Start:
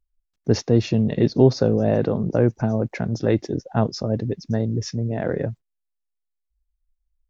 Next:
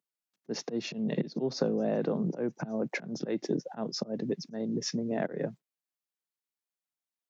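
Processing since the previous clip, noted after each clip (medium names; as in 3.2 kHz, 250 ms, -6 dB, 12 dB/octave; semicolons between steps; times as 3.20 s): slow attack 299 ms; compression 6:1, threshold -24 dBFS, peak gain reduction 10 dB; steep high-pass 150 Hz 48 dB/octave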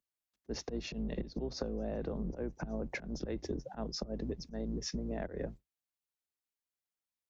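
octave divider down 2 oct, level -1 dB; compression, threshold -30 dBFS, peak gain reduction 8 dB; trim -3.5 dB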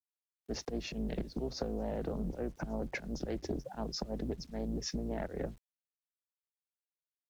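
bit crusher 11-bit; loudspeaker Doppler distortion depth 0.36 ms; trim +1 dB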